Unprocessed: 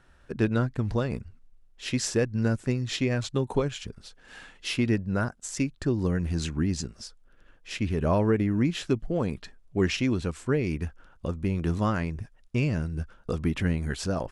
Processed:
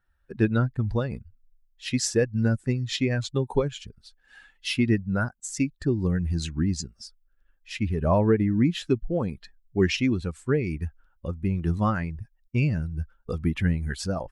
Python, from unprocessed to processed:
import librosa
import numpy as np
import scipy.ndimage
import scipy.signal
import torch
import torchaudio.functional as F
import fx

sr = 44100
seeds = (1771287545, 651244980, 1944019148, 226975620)

y = fx.bin_expand(x, sr, power=1.5)
y = y * librosa.db_to_amplitude(4.5)